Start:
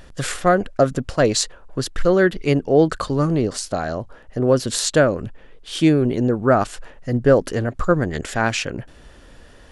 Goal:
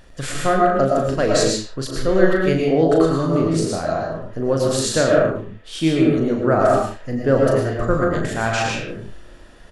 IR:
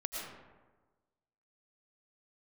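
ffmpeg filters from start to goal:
-filter_complex "[0:a]asplit=2[a][b];[b]adelay=37,volume=-6dB[c];[a][c]amix=inputs=2:normalize=0[d];[1:a]atrim=start_sample=2205,afade=t=out:st=0.35:d=0.01,atrim=end_sample=15876[e];[d][e]afir=irnorm=-1:irlink=0,volume=-2dB"

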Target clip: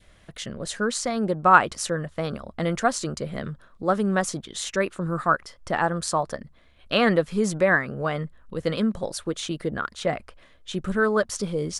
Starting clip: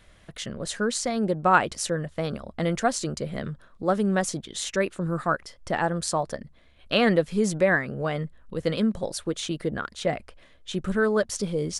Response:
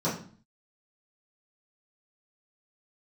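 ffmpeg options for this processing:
-af "adynamicequalizer=threshold=0.0112:dfrequency=1200:dqfactor=1.7:tfrequency=1200:tqfactor=1.7:attack=5:release=100:ratio=0.375:range=3:mode=boostabove:tftype=bell"

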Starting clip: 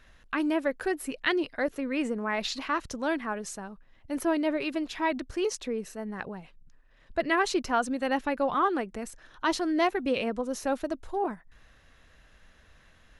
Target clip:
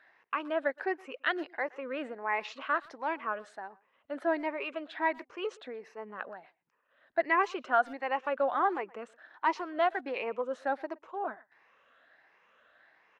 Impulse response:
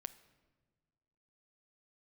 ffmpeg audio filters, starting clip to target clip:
-filter_complex "[0:a]afftfilt=real='re*pow(10,9/40*sin(2*PI*(0.79*log(max(b,1)*sr/1024/100)/log(2)-(1.4)*(pts-256)/sr)))':imag='im*pow(10,9/40*sin(2*PI*(0.79*log(max(b,1)*sr/1024/100)/log(2)-(1.4)*(pts-256)/sr)))':win_size=1024:overlap=0.75,highpass=580,lowpass=2k,asplit=2[a][b];[b]adelay=120,highpass=300,lowpass=3.4k,asoftclip=type=hard:threshold=-23.5dB,volume=-23dB[c];[a][c]amix=inputs=2:normalize=0"

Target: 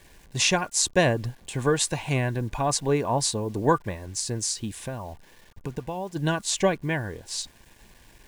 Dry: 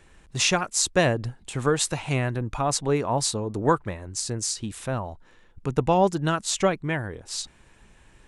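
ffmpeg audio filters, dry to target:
-filter_complex "[0:a]asplit=3[a][b][c];[a]afade=t=out:st=4.84:d=0.02[d];[b]acompressor=threshold=-29dB:ratio=10,afade=t=in:st=4.84:d=0.02,afade=t=out:st=6.15:d=0.02[e];[c]afade=t=in:st=6.15:d=0.02[f];[d][e][f]amix=inputs=3:normalize=0,acrusher=bits=8:mix=0:aa=0.000001,asuperstop=centerf=1300:order=20:qfactor=6.7"

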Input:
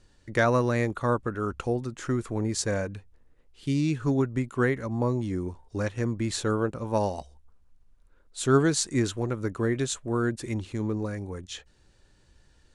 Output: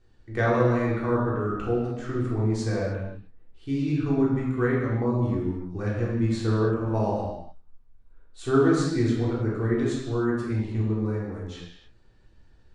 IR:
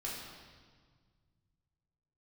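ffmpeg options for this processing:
-filter_complex "[0:a]lowpass=f=2.1k:p=1[a];[1:a]atrim=start_sample=2205,afade=t=out:st=0.37:d=0.01,atrim=end_sample=16758[b];[a][b]afir=irnorm=-1:irlink=0"

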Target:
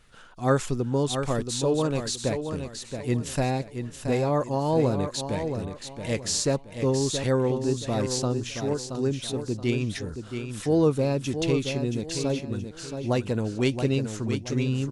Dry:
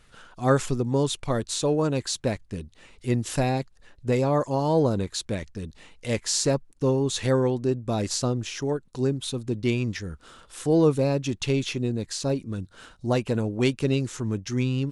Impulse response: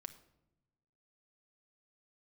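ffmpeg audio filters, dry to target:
-af "aecho=1:1:675|1350|2025|2700:0.422|0.135|0.0432|0.0138,volume=-1.5dB"

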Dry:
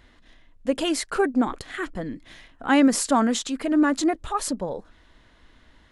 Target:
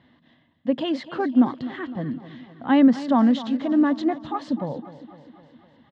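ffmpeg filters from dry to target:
-af "highpass=f=100:w=0.5412,highpass=f=100:w=1.3066,equalizer=f=150:t=q:w=4:g=9,equalizer=f=240:t=q:w=4:g=6,equalizer=f=420:t=q:w=4:g=-7,equalizer=f=1.4k:t=q:w=4:g=-9,equalizer=f=2.4k:t=q:w=4:g=-10,lowpass=f=3.5k:w=0.5412,lowpass=f=3.5k:w=1.3066,aecho=1:1:254|508|762|1016|1270|1524:0.178|0.103|0.0598|0.0347|0.0201|0.0117"

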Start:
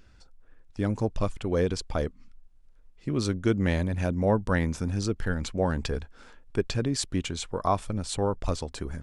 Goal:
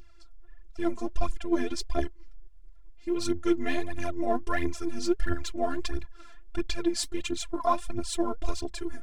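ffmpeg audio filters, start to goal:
-af "afftfilt=real='hypot(re,im)*cos(PI*b)':imag='0':win_size=512:overlap=0.75,aphaser=in_gain=1:out_gain=1:delay=4.6:decay=0.68:speed=1.5:type=triangular"

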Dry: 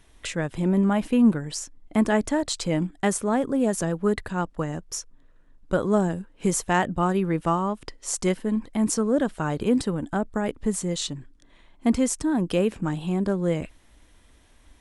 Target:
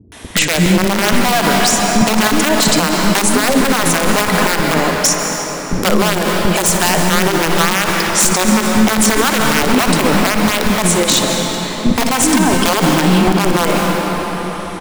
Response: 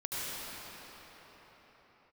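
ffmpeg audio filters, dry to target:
-filter_complex "[0:a]highpass=f=90:w=0.5412,highpass=f=90:w=1.3066,equalizer=f=140:w=3.4:g=-12.5,acompressor=threshold=-39dB:ratio=2,aeval=exprs='(mod(22.4*val(0)+1,2)-1)/22.4':c=same,acrossover=split=310[a][b];[b]adelay=120[c];[a][c]amix=inputs=2:normalize=0,asplit=2[d][e];[1:a]atrim=start_sample=2205,adelay=59[f];[e][f]afir=irnorm=-1:irlink=0,volume=-9.5dB[g];[d][g]amix=inputs=2:normalize=0,alimiter=level_in=27dB:limit=-1dB:release=50:level=0:latency=1,volume=-1dB"

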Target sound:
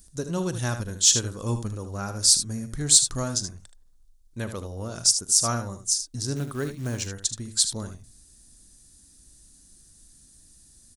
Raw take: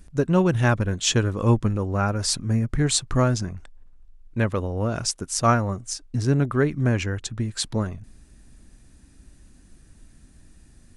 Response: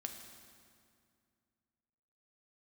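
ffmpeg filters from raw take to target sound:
-filter_complex "[0:a]aecho=1:1:41|76:0.141|0.335,aexciter=amount=6.9:drive=4.4:freq=3.6k,asettb=1/sr,asplit=3[a][b][c];[a]atrim=end=6.364[d];[b]atrim=start=6.36:end=7.07,asetpts=PTS-STARTPTS,afade=t=in:d=0.004:c=qsin,afade=t=out:st=0.706:d=0.004:c=qsin,acrusher=bits=5:mode=log:mix=0:aa=0.000001[e];[c]atrim=start=7.066[f];[d][e]acrossfade=d=0.004:c1=hsin:c2=qsin[g];[g][f]acrossfade=d=0.004:c1=qsin:c2=hsin,volume=-9.5dB"

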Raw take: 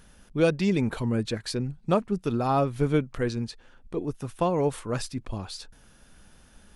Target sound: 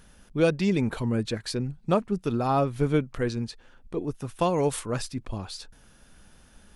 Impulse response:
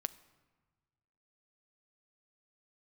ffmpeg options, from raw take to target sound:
-filter_complex "[0:a]asettb=1/sr,asplit=3[a][b][c];[a]atrim=end=4.394[d];[b]atrim=start=4.39:end=4.86,asetpts=PTS-STARTPTS,afade=t=in:d=0.004:c=qsin,afade=t=out:st=0.466:d=0.004:c=qsin,highshelf=f=2.6k:g=9.5[e];[c]atrim=start=4.856[f];[d][e]acrossfade=d=0.004:c1=hsin:c2=qsin[g];[g][f]acrossfade=d=0.004:c1=qsin:c2=hsin"

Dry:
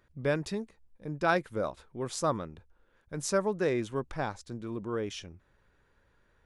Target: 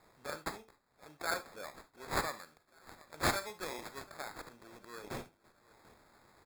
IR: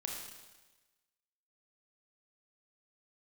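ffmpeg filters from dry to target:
-filter_complex "[0:a]aderivative,acrossover=split=5200[a][b];[b]acompressor=mode=upward:threshold=-54dB:ratio=2.5[c];[a][c]amix=inputs=2:normalize=0,aecho=1:1:737|1474|2211:0.0794|0.0342|0.0147,acrusher=samples=15:mix=1:aa=0.000001,asplit=2[d][e];[1:a]atrim=start_sample=2205,atrim=end_sample=3528[f];[e][f]afir=irnorm=-1:irlink=0,volume=-0.5dB[g];[d][g]amix=inputs=2:normalize=0,asplit=3[h][i][j];[h]afade=t=out:st=2.37:d=0.02[k];[i]adynamicequalizer=threshold=0.00398:dfrequency=1600:dqfactor=0.7:tfrequency=1600:tqfactor=0.7:attack=5:release=100:ratio=0.375:range=2:mode=boostabove:tftype=highshelf,afade=t=in:st=2.37:d=0.02,afade=t=out:st=4.02:d=0.02[l];[j]afade=t=in:st=4.02:d=0.02[m];[k][l][m]amix=inputs=3:normalize=0,volume=1.5dB"

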